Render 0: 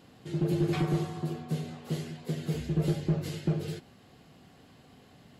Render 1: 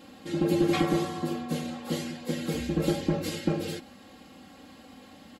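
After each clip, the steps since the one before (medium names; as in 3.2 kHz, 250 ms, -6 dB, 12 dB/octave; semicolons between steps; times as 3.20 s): bass shelf 84 Hz -8 dB; comb 3.7 ms, depth 94%; trim +4.5 dB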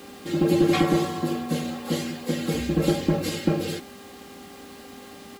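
bit crusher 9-bit; mains buzz 400 Hz, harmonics 34, -53 dBFS -6 dB/octave; trim +4.5 dB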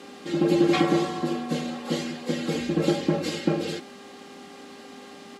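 band-pass 170–7400 Hz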